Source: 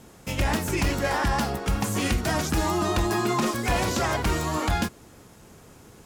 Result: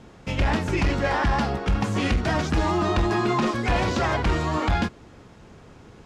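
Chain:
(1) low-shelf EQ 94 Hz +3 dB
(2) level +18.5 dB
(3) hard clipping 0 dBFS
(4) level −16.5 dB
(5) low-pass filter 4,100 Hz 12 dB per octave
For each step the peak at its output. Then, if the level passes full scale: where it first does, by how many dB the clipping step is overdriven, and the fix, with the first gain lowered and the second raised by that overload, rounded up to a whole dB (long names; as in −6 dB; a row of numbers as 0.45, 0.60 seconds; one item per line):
−13.5, +5.0, 0.0, −16.5, −16.0 dBFS
step 2, 5.0 dB
step 2 +13.5 dB, step 4 −11.5 dB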